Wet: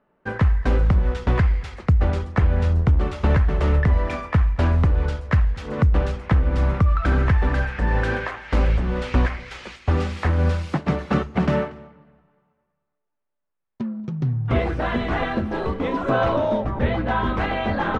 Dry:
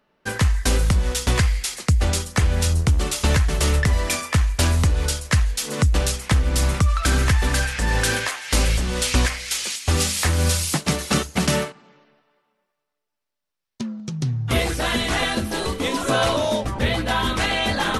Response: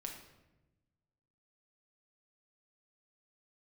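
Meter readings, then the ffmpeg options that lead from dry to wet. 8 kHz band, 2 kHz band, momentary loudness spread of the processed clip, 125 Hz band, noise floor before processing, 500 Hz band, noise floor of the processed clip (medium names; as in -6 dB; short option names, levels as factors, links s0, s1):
under -25 dB, -4.0 dB, 6 LU, +1.0 dB, -80 dBFS, +1.0 dB, -78 dBFS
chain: -filter_complex "[0:a]lowpass=1500,aecho=1:1:235:0.0708,asplit=2[s0][s1];[1:a]atrim=start_sample=2205[s2];[s1][s2]afir=irnorm=-1:irlink=0,volume=0.2[s3];[s0][s3]amix=inputs=2:normalize=0"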